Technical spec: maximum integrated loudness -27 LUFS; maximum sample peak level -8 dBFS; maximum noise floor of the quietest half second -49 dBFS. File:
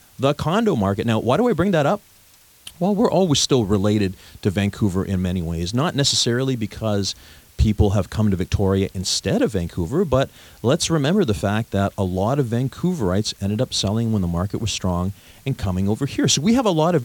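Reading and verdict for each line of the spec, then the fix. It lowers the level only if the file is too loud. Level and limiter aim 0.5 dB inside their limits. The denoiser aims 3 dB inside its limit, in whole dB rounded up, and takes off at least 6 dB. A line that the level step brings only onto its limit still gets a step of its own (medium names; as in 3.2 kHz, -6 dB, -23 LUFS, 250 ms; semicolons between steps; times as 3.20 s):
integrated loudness -20.5 LUFS: fail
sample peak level -4.0 dBFS: fail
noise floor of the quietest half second -52 dBFS: pass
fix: trim -7 dB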